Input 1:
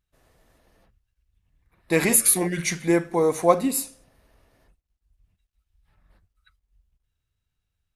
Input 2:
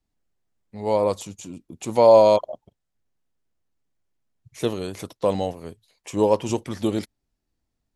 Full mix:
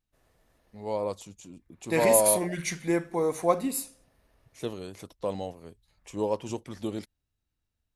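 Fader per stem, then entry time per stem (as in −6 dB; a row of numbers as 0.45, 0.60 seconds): −6.0, −9.5 decibels; 0.00, 0.00 seconds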